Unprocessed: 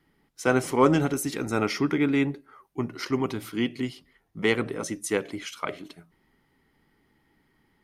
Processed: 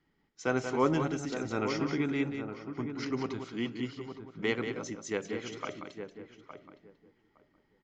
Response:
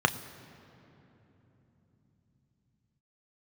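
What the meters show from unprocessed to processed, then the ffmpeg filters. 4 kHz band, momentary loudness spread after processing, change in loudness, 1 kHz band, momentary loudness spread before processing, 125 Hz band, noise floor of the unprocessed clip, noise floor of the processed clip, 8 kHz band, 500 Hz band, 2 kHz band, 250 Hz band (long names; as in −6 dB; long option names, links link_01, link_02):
−7.0 dB, 16 LU, −7.0 dB, −6.5 dB, 13 LU, −6.5 dB, −68 dBFS, −73 dBFS, −10.0 dB, −6.5 dB, −6.5 dB, −6.5 dB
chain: -filter_complex "[0:a]asplit=2[link_01][link_02];[link_02]adelay=863,lowpass=frequency=1300:poles=1,volume=-8dB,asplit=2[link_03][link_04];[link_04]adelay=863,lowpass=frequency=1300:poles=1,volume=0.17,asplit=2[link_05][link_06];[link_06]adelay=863,lowpass=frequency=1300:poles=1,volume=0.17[link_07];[link_03][link_05][link_07]amix=inputs=3:normalize=0[link_08];[link_01][link_08]amix=inputs=2:normalize=0,aresample=16000,aresample=44100,asplit=2[link_09][link_10];[link_10]aecho=0:1:183:0.398[link_11];[link_09][link_11]amix=inputs=2:normalize=0,volume=-7.5dB"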